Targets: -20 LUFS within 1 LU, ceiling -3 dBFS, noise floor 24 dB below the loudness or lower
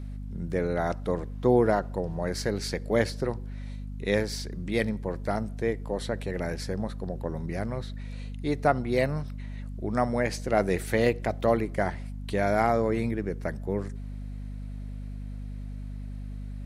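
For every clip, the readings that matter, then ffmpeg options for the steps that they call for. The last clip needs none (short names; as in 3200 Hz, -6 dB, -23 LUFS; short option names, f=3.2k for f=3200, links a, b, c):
hum 50 Hz; harmonics up to 250 Hz; hum level -34 dBFS; loudness -29.0 LUFS; peak -8.5 dBFS; loudness target -20.0 LUFS
-> -af "bandreject=f=50:t=h:w=4,bandreject=f=100:t=h:w=4,bandreject=f=150:t=h:w=4,bandreject=f=200:t=h:w=4,bandreject=f=250:t=h:w=4"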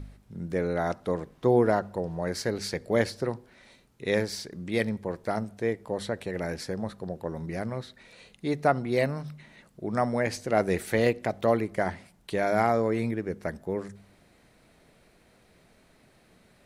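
hum none; loudness -29.0 LUFS; peak -8.5 dBFS; loudness target -20.0 LUFS
-> -af "volume=9dB,alimiter=limit=-3dB:level=0:latency=1"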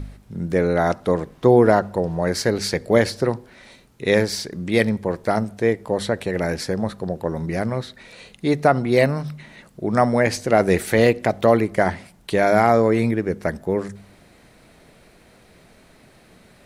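loudness -20.5 LUFS; peak -3.0 dBFS; noise floor -52 dBFS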